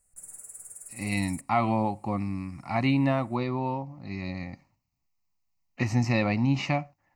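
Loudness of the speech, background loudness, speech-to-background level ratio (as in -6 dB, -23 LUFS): -28.5 LUFS, -42.5 LUFS, 14.0 dB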